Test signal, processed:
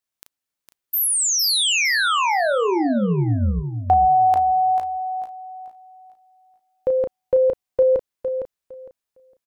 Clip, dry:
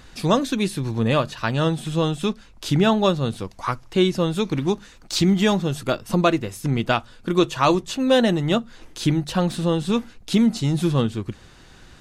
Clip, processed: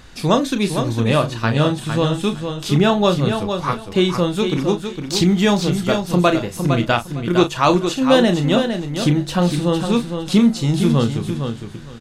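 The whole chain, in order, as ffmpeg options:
ffmpeg -i in.wav -filter_complex "[0:a]asplit=2[link_01][link_02];[link_02]adelay=34,volume=-9dB[link_03];[link_01][link_03]amix=inputs=2:normalize=0,asplit=2[link_04][link_05];[link_05]aecho=0:1:458|916|1374:0.447|0.0893|0.0179[link_06];[link_04][link_06]amix=inputs=2:normalize=0,volume=2.5dB" out.wav

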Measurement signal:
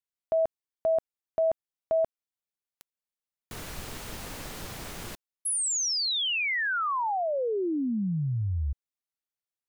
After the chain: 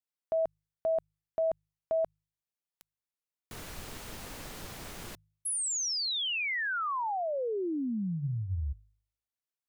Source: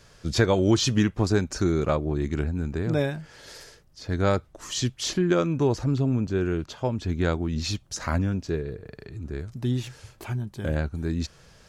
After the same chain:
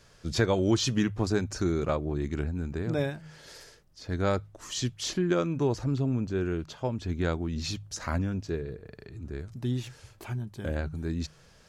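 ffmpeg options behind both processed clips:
ffmpeg -i in.wav -af "bandreject=frequency=51.55:width_type=h:width=4,bandreject=frequency=103.1:width_type=h:width=4,bandreject=frequency=154.65:width_type=h:width=4,volume=-4dB" out.wav

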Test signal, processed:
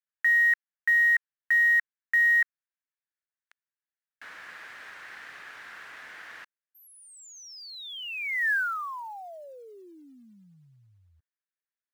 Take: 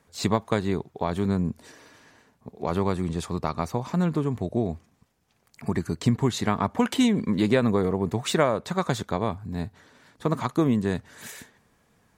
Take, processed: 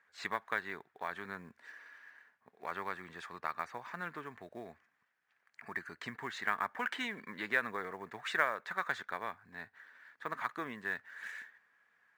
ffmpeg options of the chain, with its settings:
ffmpeg -i in.wav -af "bandpass=frequency=1700:width_type=q:width=3.8:csg=0,acrusher=bits=7:mode=log:mix=0:aa=0.000001,volume=3.5dB" out.wav

